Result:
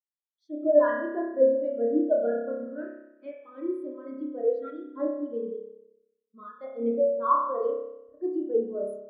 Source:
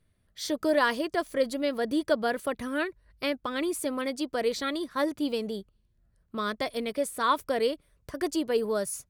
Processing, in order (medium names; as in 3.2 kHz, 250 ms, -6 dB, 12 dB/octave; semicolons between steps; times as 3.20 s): spring tank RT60 2.1 s, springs 30 ms, chirp 70 ms, DRR -4 dB; spectral contrast expander 2.5:1